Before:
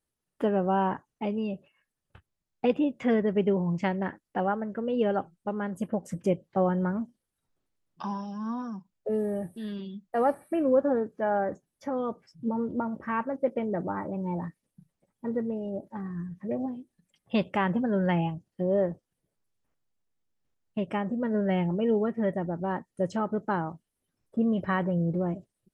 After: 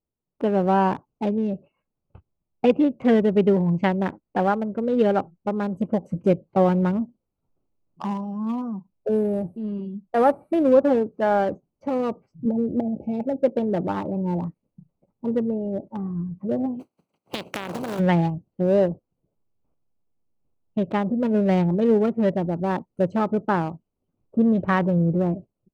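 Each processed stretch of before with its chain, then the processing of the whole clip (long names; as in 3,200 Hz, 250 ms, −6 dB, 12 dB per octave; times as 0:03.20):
0:12.45–0:13.42: linear-phase brick-wall band-stop 870–2,200 Hz + multiband upward and downward compressor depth 40%
0:16.79–0:17.98: compressing power law on the bin magnitudes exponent 0.35 + high-pass filter 140 Hz + downward compressor 10 to 1, threshold −30 dBFS
whole clip: adaptive Wiener filter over 25 samples; automatic gain control gain up to 7 dB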